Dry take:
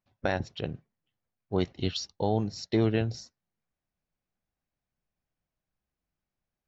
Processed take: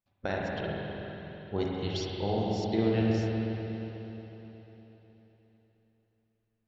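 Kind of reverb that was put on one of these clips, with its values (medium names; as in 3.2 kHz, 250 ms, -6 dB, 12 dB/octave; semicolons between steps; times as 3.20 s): spring tank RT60 3.9 s, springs 40/45/51 ms, chirp 25 ms, DRR -4 dB; trim -5.5 dB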